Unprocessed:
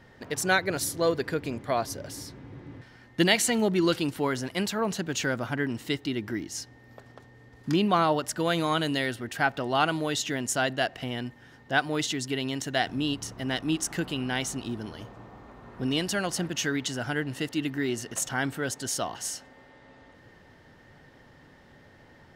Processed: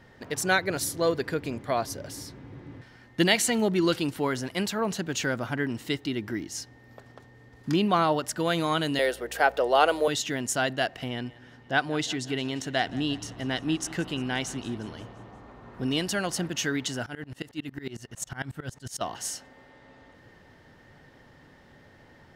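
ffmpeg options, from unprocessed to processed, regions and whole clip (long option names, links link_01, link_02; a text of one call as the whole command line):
ffmpeg -i in.wav -filter_complex "[0:a]asettb=1/sr,asplit=3[link_01][link_02][link_03];[link_01]atrim=end=8.994[link_04];[link_02]atrim=start=8.99:end=10.08,asetpts=PTS-STARTPTS,afade=type=in:duration=0.004:curve=qsin,afade=type=out:start_time=1.086:duration=0.004:curve=qsin,highpass=frequency=490:width_type=q:width=4.1,highshelf=frequency=9100:gain=7.5,aeval=exprs='val(0)+0.00282*(sin(2*PI*60*n/s)+sin(2*PI*2*60*n/s)/2+sin(2*PI*3*60*n/s)/3+sin(2*PI*4*60*n/s)/4+sin(2*PI*5*60*n/s)/5)':channel_layout=same[link_05];[link_03]atrim=start=10.076[link_06];[link_04][link_05]acrossfade=duration=0.004:curve1=hsin:curve2=qsin[link_07];[link_07][link_06]acrossfade=duration=0.004:curve1=qsin:curve2=hsin,asettb=1/sr,asplit=3[link_08][link_09][link_10];[link_08]atrim=end=11.084[link_11];[link_09]atrim=start=11.08:end=15.74,asetpts=PTS-STARTPTS,afade=type=in:duration=0.004:curve=qsin,afade=type=out:start_time=4.656:duration=0.004:curve=qsin,highshelf=frequency=11000:gain=-12,aecho=1:1:176|352|528|704|880:0.106|0.0614|0.0356|0.0207|0.012,atrim=end_sample=205506[link_12];[link_10]atrim=start=15.736[link_13];[link_11][link_12]acrossfade=duration=0.004:curve1=hsin:curve2=qsin[link_14];[link_14][link_13]acrossfade=duration=0.004:curve1=qsin:curve2=hsin,asettb=1/sr,asplit=3[link_15][link_16][link_17];[link_15]atrim=end=17.064[link_18];[link_16]atrim=start=17.06:end=19.01,asetpts=PTS-STARTPTS,afade=type=in:duration=0.004:curve=qsin,afade=type=out:start_time=1.946:duration=0.004:curve=qsin,asubboost=boost=6.5:cutoff=150,aeval=exprs='val(0)*pow(10,-24*if(lt(mod(-11*n/s,1),2*abs(-11)/1000),1-mod(-11*n/s,1)/(2*abs(-11)/1000),(mod(-11*n/s,1)-2*abs(-11)/1000)/(1-2*abs(-11)/1000))/20)':channel_layout=same[link_19];[link_17]atrim=start=19.006[link_20];[link_18][link_19]acrossfade=duration=0.004:curve1=hsin:curve2=qsin[link_21];[link_21][link_20]acrossfade=duration=0.004:curve1=qsin:curve2=hsin" out.wav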